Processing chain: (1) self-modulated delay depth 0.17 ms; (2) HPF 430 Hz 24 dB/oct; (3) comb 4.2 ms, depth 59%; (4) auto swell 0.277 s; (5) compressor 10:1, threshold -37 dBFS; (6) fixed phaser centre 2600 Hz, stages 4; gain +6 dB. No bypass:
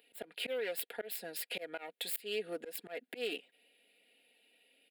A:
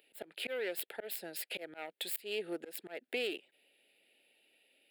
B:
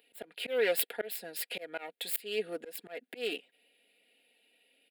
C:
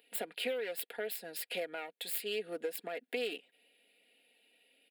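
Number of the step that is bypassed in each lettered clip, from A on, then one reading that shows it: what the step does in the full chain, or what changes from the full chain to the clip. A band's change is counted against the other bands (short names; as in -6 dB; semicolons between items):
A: 3, 250 Hz band +3.0 dB; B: 5, mean gain reduction 2.5 dB; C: 4, crest factor change -2.5 dB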